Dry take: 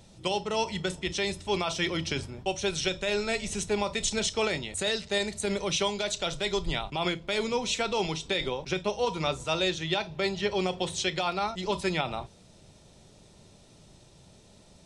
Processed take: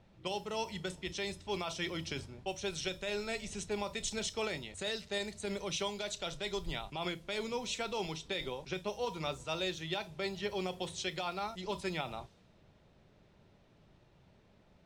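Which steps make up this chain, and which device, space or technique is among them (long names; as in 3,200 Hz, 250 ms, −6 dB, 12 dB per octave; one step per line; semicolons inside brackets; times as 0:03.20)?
cassette deck with a dynamic noise filter (white noise bed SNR 28 dB; low-pass that shuts in the quiet parts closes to 2,200 Hz, open at −25.5 dBFS)
level −8.5 dB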